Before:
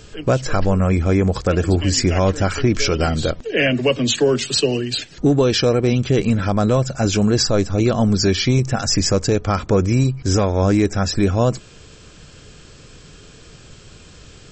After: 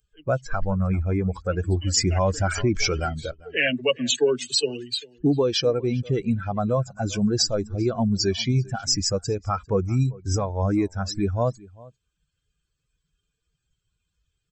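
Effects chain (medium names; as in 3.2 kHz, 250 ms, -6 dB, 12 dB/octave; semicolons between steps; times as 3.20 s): expander on every frequency bin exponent 2; bass shelf 450 Hz -3 dB; echo from a far wall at 68 m, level -22 dB; 1.94–3.00 s: level flattener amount 50%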